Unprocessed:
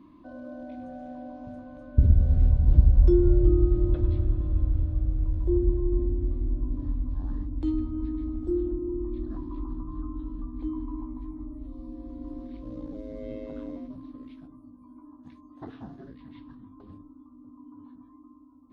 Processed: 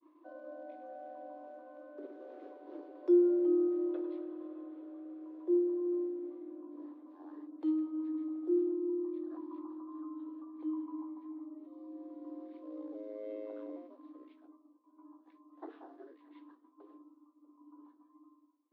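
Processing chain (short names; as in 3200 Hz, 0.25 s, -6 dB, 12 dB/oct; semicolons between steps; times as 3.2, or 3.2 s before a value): steep high-pass 300 Hz 96 dB/oct; expander -53 dBFS; LPF 1200 Hz 6 dB/oct; gain -2 dB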